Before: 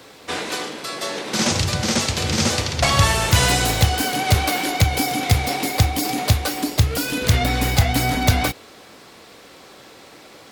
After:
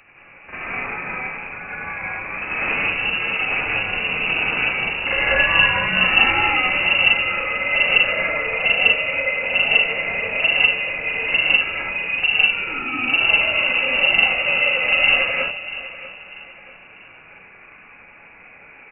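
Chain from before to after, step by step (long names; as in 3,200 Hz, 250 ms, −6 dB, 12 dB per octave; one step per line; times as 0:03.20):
time stretch by overlap-add 1.8×, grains 180 ms
pitch vibrato 2.2 Hz 40 cents
repeating echo 641 ms, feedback 35%, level −15 dB
reverb whose tail is shaped and stops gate 230 ms rising, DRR −5.5 dB
voice inversion scrambler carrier 2,800 Hz
level −5 dB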